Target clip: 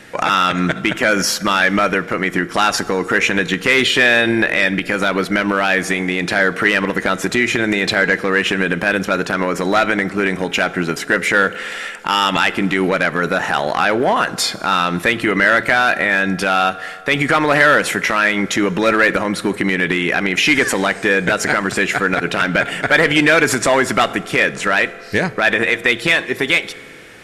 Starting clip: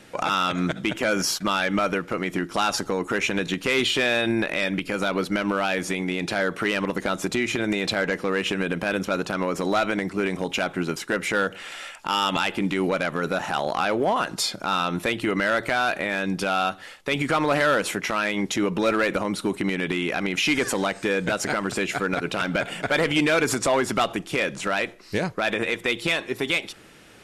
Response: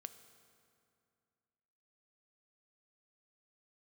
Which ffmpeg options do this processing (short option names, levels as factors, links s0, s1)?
-filter_complex "[0:a]equalizer=f=1800:w=2.8:g=8,asplit=2[s0][s1];[1:a]atrim=start_sample=2205[s2];[s1][s2]afir=irnorm=-1:irlink=0,volume=1.68[s3];[s0][s3]amix=inputs=2:normalize=0,volume=1.12"